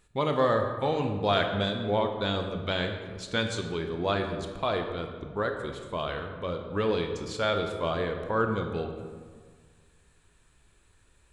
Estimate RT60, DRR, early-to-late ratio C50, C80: 1.7 s, 4.5 dB, 6.0 dB, 7.5 dB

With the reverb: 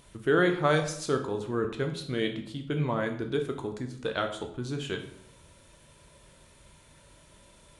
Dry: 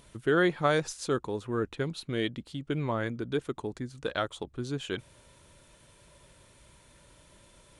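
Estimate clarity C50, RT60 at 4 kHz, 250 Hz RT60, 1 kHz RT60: 9.5 dB, 0.50 s, 0.80 s, 0.60 s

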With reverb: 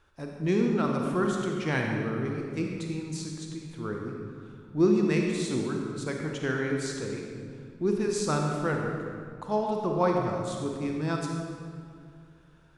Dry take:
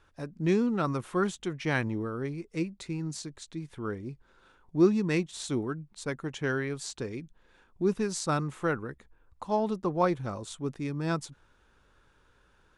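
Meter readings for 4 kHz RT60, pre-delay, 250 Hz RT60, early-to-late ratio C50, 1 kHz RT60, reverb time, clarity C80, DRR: 1.5 s, 36 ms, 2.8 s, 1.5 dB, 2.0 s, 2.2 s, 2.5 dB, 0.5 dB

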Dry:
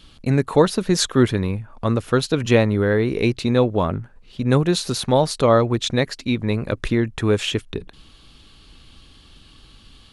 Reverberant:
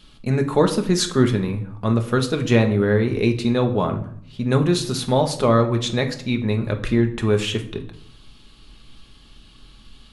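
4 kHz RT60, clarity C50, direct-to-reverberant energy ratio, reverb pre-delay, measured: 0.45 s, 11.5 dB, 4.0 dB, 5 ms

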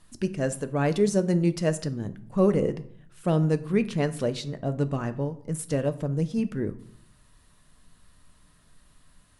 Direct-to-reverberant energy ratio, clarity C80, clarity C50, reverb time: 10.0 dB, 19.5 dB, 16.0 dB, 0.65 s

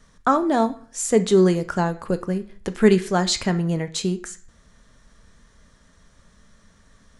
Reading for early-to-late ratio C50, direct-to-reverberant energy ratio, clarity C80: 15.5 dB, 9.0 dB, 20.5 dB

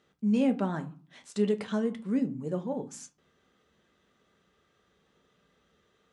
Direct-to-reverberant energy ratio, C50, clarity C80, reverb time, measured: 6.5 dB, 17.0 dB, 23.0 dB, 0.45 s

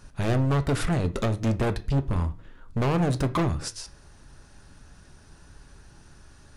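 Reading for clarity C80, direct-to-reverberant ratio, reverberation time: 23.0 dB, 9.0 dB, 0.40 s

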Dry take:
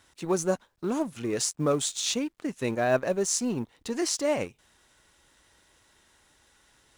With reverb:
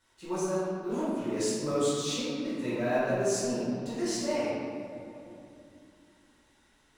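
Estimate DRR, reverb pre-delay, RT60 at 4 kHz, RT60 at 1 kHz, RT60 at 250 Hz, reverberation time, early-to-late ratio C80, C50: -11.5 dB, 5 ms, 1.5 s, 2.6 s, 3.7 s, 2.7 s, -1.0 dB, -3.5 dB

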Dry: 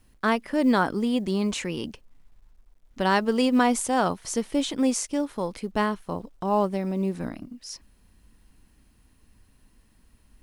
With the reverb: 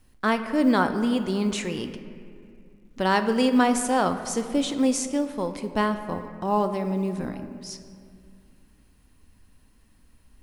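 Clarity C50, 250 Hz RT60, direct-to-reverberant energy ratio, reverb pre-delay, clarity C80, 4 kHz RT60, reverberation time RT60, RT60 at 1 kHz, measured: 9.5 dB, 2.8 s, 8.0 dB, 4 ms, 10.5 dB, 1.4 s, 2.3 s, 2.2 s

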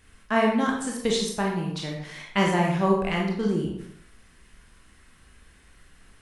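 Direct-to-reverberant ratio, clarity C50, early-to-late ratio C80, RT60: -1.5 dB, 3.0 dB, 6.5 dB, 0.70 s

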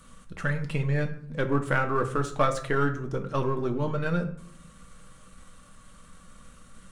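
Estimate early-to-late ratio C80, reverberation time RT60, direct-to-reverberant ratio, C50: 15.5 dB, 0.65 s, 4.0 dB, 12.0 dB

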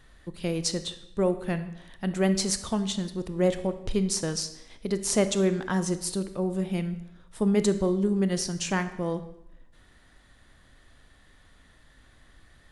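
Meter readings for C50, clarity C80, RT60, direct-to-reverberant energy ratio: 12.5 dB, 14.5 dB, 0.90 s, 10.5 dB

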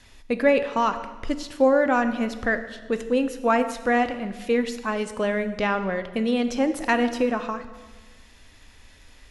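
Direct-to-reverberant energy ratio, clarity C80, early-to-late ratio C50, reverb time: 9.5 dB, 13.0 dB, 11.5 dB, 1.4 s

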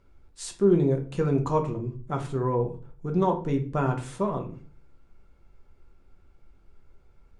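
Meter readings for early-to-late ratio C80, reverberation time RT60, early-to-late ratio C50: 17.0 dB, 0.45 s, 11.5 dB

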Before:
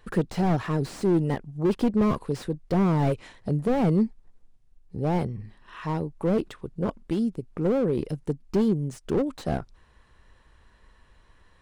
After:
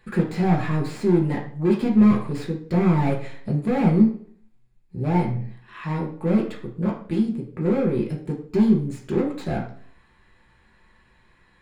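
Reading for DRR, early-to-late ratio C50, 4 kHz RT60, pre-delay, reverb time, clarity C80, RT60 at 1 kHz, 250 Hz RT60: -2.0 dB, 8.5 dB, 0.45 s, 3 ms, 0.55 s, 12.0 dB, 0.50 s, 0.60 s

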